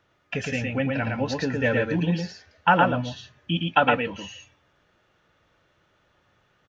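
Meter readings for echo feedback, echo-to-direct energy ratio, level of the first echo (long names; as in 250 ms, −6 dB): repeats not evenly spaced, −3.0 dB, −3.0 dB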